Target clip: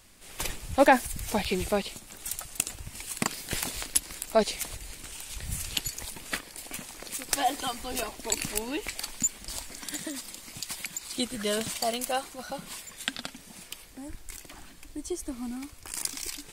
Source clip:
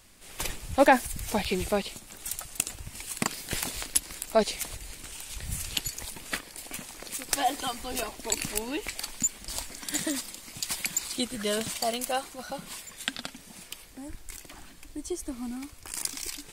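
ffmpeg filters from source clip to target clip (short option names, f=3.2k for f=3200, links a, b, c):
-filter_complex "[0:a]asettb=1/sr,asplit=3[a][b][c];[a]atrim=end=9.414[d];[b]atrim=start=9.41:end=11.17,asetpts=PTS-STARTPTS,afade=t=in:d=0.004:c=qsin,afade=t=out:st=1.756:d=0.004:c=qsin,acompressor=threshold=-32dB:ratio=6[e];[c]atrim=start=11.166[f];[d][e]acrossfade=d=0.004:c1=hsin:c2=qsin[g];[g][f]acrossfade=d=0.004:c1=qsin:c2=hsin"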